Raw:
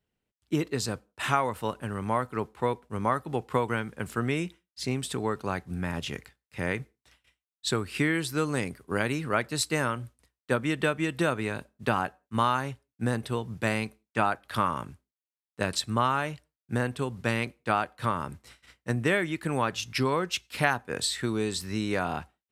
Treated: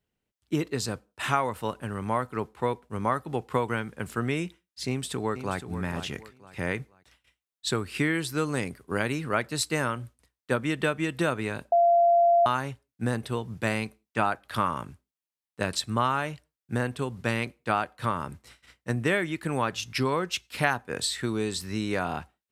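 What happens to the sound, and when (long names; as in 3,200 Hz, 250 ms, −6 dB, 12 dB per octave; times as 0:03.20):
0:04.87–0:05.59: delay throw 480 ms, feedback 30%, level −10.5 dB
0:11.72–0:12.46: beep over 688 Hz −16.5 dBFS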